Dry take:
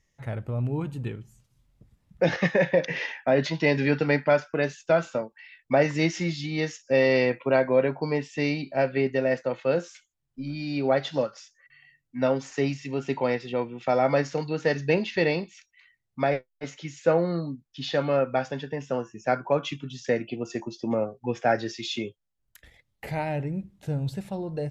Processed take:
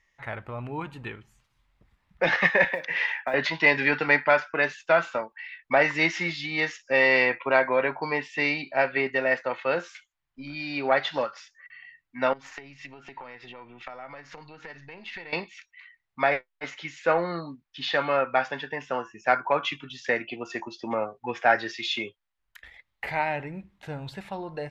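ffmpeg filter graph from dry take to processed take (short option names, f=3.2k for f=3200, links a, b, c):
-filter_complex "[0:a]asettb=1/sr,asplit=3[a][b][c];[a]atrim=end=2.644[d];[b]atrim=start=2.64:end=3.34,asetpts=PTS-STARTPTS,afade=t=in:d=0.004:c=qsin,afade=t=out:st=0.696:d=0.004:c=qsin,acrusher=bits=9:mode=log:mix=0:aa=0.000001,acrossover=split=180|5800[e][f][g];[e]acompressor=threshold=-48dB:ratio=4[h];[f]acompressor=threshold=-30dB:ratio=4[i];[g]acompressor=threshold=-57dB:ratio=4[j];[h][i][j]amix=inputs=3:normalize=0[k];[c]atrim=start=3.336[l];[d][k]acrossfade=d=0.004:c1=hsin:c2=qsin[m];[m][l]acrossfade=d=0.004:c1=qsin:c2=hsin,asettb=1/sr,asplit=3[n][o][p];[n]atrim=end=12.334[q];[o]atrim=start=12.33:end=15.33,asetpts=PTS-STARTPTS,afade=t=in:d=0.004:c=qsin,afade=t=out:st=2.996:d=0.004:c=qsin,lowshelf=f=160:g=11,acompressor=threshold=-35dB:ratio=16:attack=3.2:release=140:knee=1:detection=peak,aeval=exprs='(tanh(17.8*val(0)+0.6)-tanh(0.6))/17.8':c=same[r];[p]atrim=start=15.326[s];[q][r]acrossfade=d=0.004:c1=hsin:c2=qsin[t];[t][s]acrossfade=d=0.004:c1=qsin:c2=hsin,bass=f=250:g=-4,treble=f=4k:g=-9,acontrast=73,equalizer=f=125:t=o:w=1:g=-8,equalizer=f=250:t=o:w=1:g=-4,equalizer=f=500:t=o:w=1:g=-5,equalizer=f=1k:t=o:w=1:g=6,equalizer=f=2k:t=o:w=1:g=6,equalizer=f=4k:t=o:w=1:g=4,volume=-5dB"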